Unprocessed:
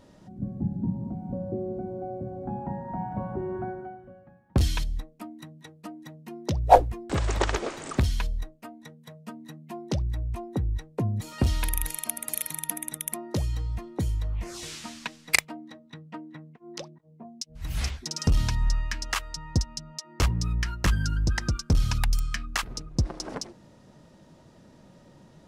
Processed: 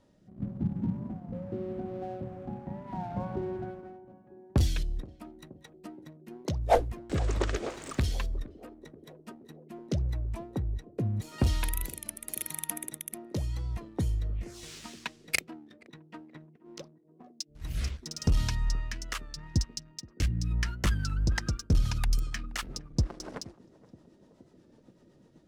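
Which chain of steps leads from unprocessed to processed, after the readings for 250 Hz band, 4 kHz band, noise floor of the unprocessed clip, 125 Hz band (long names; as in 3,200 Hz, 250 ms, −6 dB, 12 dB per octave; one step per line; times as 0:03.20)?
−3.0 dB, −5.0 dB, −55 dBFS, −3.0 dB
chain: rotating-speaker cabinet horn 0.85 Hz, later 8 Hz, at 0:20.38
leveller curve on the samples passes 1
gain on a spectral selection 0:19.48–0:20.51, 360–1,500 Hz −8 dB
feedback echo with a band-pass in the loop 474 ms, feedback 84%, band-pass 350 Hz, level −17 dB
wow of a warped record 33 1/3 rpm, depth 100 cents
level −5.5 dB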